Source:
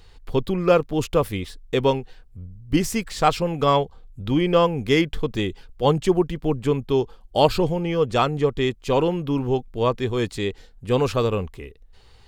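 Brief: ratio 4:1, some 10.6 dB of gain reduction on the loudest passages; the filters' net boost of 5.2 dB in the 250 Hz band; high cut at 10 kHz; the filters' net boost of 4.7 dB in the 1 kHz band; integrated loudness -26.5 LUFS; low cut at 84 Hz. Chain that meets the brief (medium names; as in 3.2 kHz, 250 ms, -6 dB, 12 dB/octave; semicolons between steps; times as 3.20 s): high-pass 84 Hz; low-pass 10 kHz; peaking EQ 250 Hz +7 dB; peaking EQ 1 kHz +5.5 dB; compression 4:1, threshold -22 dBFS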